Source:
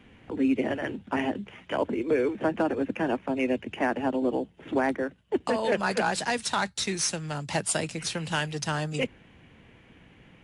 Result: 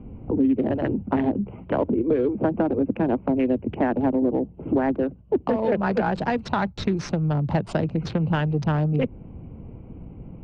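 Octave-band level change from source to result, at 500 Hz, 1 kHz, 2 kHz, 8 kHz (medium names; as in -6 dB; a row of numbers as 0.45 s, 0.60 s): +4.0 dB, +2.0 dB, -3.0 dB, under -15 dB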